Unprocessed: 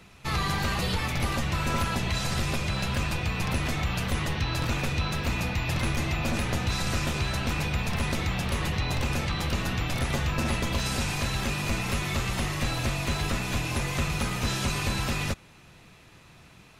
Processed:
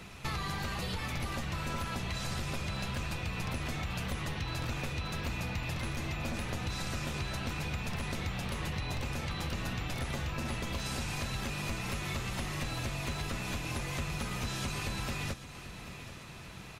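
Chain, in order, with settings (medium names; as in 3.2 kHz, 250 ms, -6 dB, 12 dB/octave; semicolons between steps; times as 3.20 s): compression 6:1, threshold -38 dBFS, peak gain reduction 14.5 dB; on a send: feedback delay 790 ms, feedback 55%, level -14 dB; on the sum: trim +4 dB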